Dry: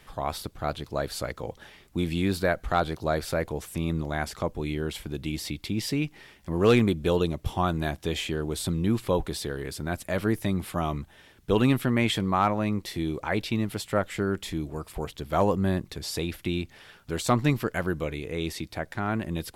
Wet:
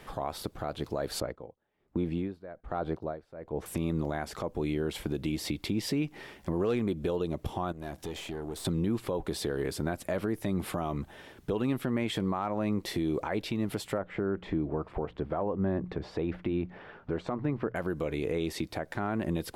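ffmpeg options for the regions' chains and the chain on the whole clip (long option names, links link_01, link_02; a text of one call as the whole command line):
ffmpeg -i in.wav -filter_complex "[0:a]asettb=1/sr,asplit=3[link_01][link_02][link_03];[link_01]atrim=end=1.204[link_04];[link_02]atrim=start=1.2:end=3.66,asetpts=PTS-STARTPTS,afade=type=in:duration=0.004:curve=qsin,afade=type=out:start_time=2.456:duration=0.004:curve=qsin,agate=range=-8dB:threshold=-44dB:ratio=16:release=100:detection=peak,lowpass=frequency=1300:poles=1,aeval=exprs='val(0)*pow(10,-27*(0.5-0.5*cos(2*PI*1.2*n/s))/20)':channel_layout=same[link_05];[link_03]atrim=start=3.656[link_06];[link_04][link_05]acrossfade=duration=0.004:curve1=hsin:curve2=qsin[link_07];[link_07][link_06]acrossfade=duration=0.004:curve1=qsin:curve2=hsin,asettb=1/sr,asplit=3[link_08][link_09][link_10];[link_08]atrim=end=7.724[link_11];[link_09]atrim=start=7.72:end=8.65,asetpts=PTS-STARTPTS,afade=type=in:duration=0.004:curve=qsin,afade=type=out:start_time=0.926:duration=0.004:curve=qsin,bass=frequency=250:gain=-1,treble=frequency=4000:gain=4,acompressor=threshold=-38dB:ratio=4:attack=3.2:release=140:knee=1:detection=peak,aeval=exprs='(tanh(56.2*val(0)+0.55)-tanh(0.55))/56.2':channel_layout=same[link_12];[link_10]atrim=start=8.646[link_13];[link_11][link_12]acrossfade=duration=0.004:curve1=hsin:curve2=qsin[link_14];[link_14][link_13]acrossfade=duration=0.004:curve1=qsin:curve2=hsin,asettb=1/sr,asplit=3[link_15][link_16][link_17];[link_15]atrim=end=13.984[link_18];[link_16]atrim=start=13.98:end=17.76,asetpts=PTS-STARTPTS,afade=type=in:duration=0.004:curve=qsin,afade=type=out:start_time=3.776:duration=0.004:curve=qsin,lowpass=1800,bandreject=frequency=60:width_type=h:width=6,bandreject=frequency=120:width_type=h:width=6,bandreject=frequency=180:width_type=h:width=6[link_19];[link_17]atrim=start=17.756[link_20];[link_18][link_19]acrossfade=duration=0.004:curve1=hsin:curve2=qsin[link_21];[link_21][link_20]acrossfade=duration=0.004:curve1=qsin:curve2=hsin,acompressor=threshold=-29dB:ratio=4,equalizer=frequency=470:width=0.36:gain=8.5,alimiter=limit=-20.5dB:level=0:latency=1:release=210" out.wav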